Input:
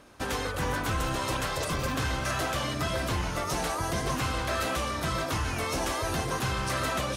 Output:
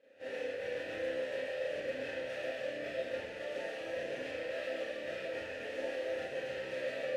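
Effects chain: switching dead time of 0.21 ms; vowel filter e; on a send: reverse echo 37 ms -13.5 dB; on the sum: Schroeder reverb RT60 0.56 s, combs from 27 ms, DRR -8.5 dB; gain -4.5 dB

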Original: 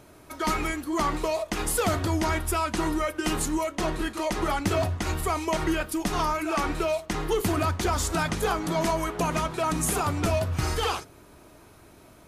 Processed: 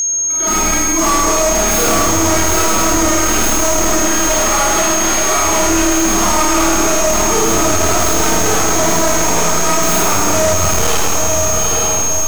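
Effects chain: tracing distortion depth 0.36 ms; AGC gain up to 9.5 dB; 4.05–5.37 weighting filter A; in parallel at 0 dB: compressor, threshold -30 dBFS, peak gain reduction 17.5 dB; on the sum: low shelf 220 Hz -4 dB; on a send: diffused feedback echo 0.843 s, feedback 50%, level -5 dB; on the sum: Schroeder reverb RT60 1.7 s, combs from 27 ms, DRR -9.5 dB; whine 6500 Hz -8 dBFS; overloaded stage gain 4.5 dB; gain -5.5 dB

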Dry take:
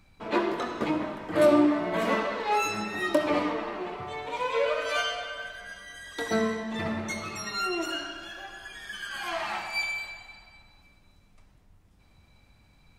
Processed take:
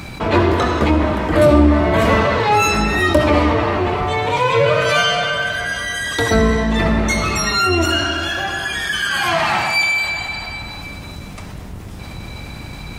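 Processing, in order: octaver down 2 oct, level +3 dB; HPF 57 Hz; fast leveller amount 50%; gain +7 dB

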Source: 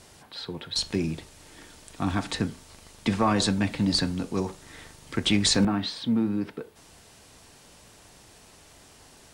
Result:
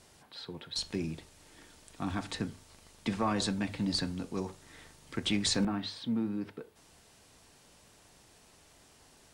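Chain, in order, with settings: notches 50/100 Hz; gain -7.5 dB

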